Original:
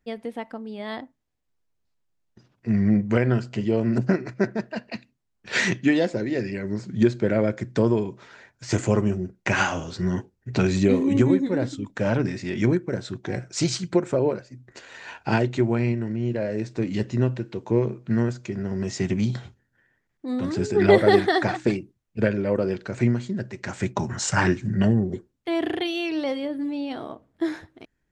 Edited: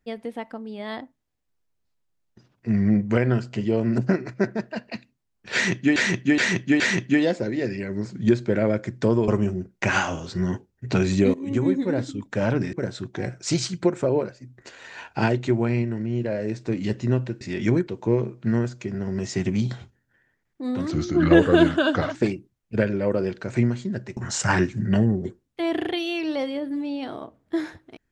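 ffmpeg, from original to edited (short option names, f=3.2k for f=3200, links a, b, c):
-filter_complex "[0:a]asplit=12[a][b][c][d][e][f][g][h][i][j][k][l];[a]atrim=end=5.962[m];[b]atrim=start=5.538:end=5.962[n];[c]atrim=start=5.538:end=5.962[o];[d]atrim=start=5.538:end=8.022[p];[e]atrim=start=8.918:end=10.98,asetpts=PTS-STARTPTS,afade=t=out:st=2.058:d=0.004:c=hsin:silence=0.11885[q];[f]atrim=start=10.98:end=12.372,asetpts=PTS-STARTPTS,afade=t=in:d=0.45:silence=0.11885[r];[g]atrim=start=12.828:end=17.512[s];[h]atrim=start=12.368:end=12.832[t];[i]atrim=start=17.508:end=20.554[u];[j]atrim=start=20.55:end=21.59,asetpts=PTS-STARTPTS,asetrate=37044,aresample=44100[v];[k]atrim=start=21.586:end=23.612[w];[l]atrim=start=24.048[x];[m][n]acrossfade=d=0.004:c1=hsin:c2=hsin[y];[y][o]acrossfade=d=0.004:c1=hsin:c2=hsin[z];[z][p]acrossfade=d=0.004:c1=hsin:c2=hsin[aa];[q][r]concat=n=2:v=0:a=1[ab];[aa][ab]acrossfade=d=0.004:c1=hsin:c2=hsin[ac];[ac][s]acrossfade=d=0.004:c1=hsin:c2=hsin[ad];[ad][t]acrossfade=d=0.004:c1=hsin:c2=hsin[ae];[ae][u]acrossfade=d=0.004:c1=hsin:c2=hsin[af];[af][v]acrossfade=d=0.004:c1=hsin:c2=hsin[ag];[ag][w]acrossfade=d=0.004:c1=hsin:c2=hsin[ah];[ah][x]acrossfade=d=0.004:c1=hsin:c2=hsin"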